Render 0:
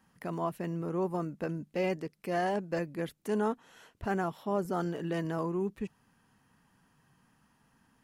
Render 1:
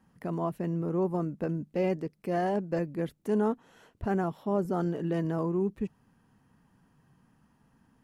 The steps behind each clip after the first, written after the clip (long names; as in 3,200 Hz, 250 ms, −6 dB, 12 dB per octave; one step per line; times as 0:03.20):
tilt shelving filter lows +5 dB, about 860 Hz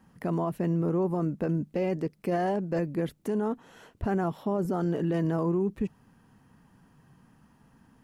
brickwall limiter −26 dBFS, peak gain reduction 9 dB
level +5.5 dB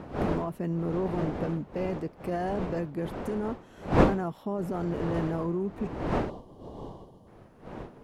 wind on the microphone 540 Hz −30 dBFS
gain on a spectral selection 0:06.30–0:07.27, 1,200–2,800 Hz −16 dB
level −3.5 dB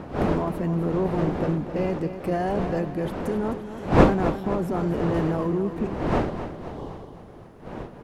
repeating echo 260 ms, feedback 55%, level −10.5 dB
level +5 dB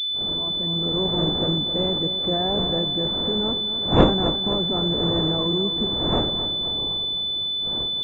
fade in at the beginning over 1.20 s
switching amplifier with a slow clock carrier 3,500 Hz